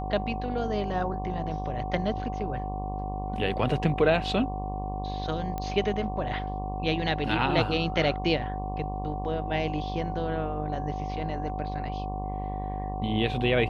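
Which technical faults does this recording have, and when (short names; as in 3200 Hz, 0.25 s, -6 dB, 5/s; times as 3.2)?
buzz 50 Hz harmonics 23 -34 dBFS
tone 750 Hz -35 dBFS
5.58 pop -19 dBFS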